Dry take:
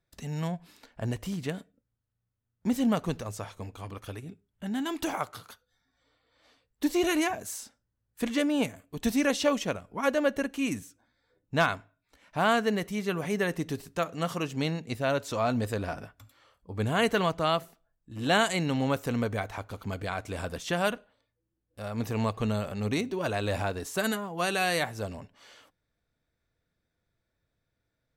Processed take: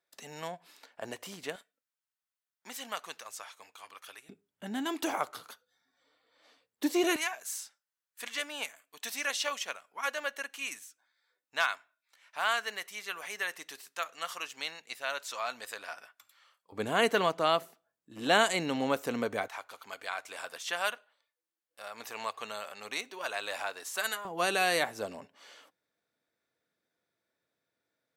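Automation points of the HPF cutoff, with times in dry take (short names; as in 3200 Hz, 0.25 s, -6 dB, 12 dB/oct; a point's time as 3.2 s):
500 Hz
from 1.56 s 1200 Hz
from 4.29 s 290 Hz
from 7.16 s 1200 Hz
from 16.72 s 290 Hz
from 19.48 s 920 Hz
from 24.25 s 290 Hz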